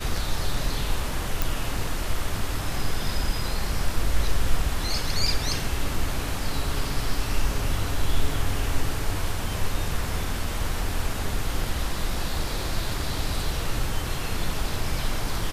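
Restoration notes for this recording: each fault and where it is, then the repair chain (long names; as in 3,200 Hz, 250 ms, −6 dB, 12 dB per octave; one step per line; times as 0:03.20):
0:01.42: click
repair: click removal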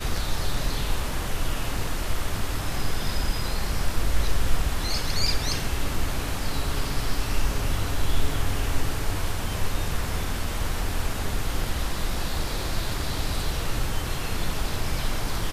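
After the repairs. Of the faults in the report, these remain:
none of them is left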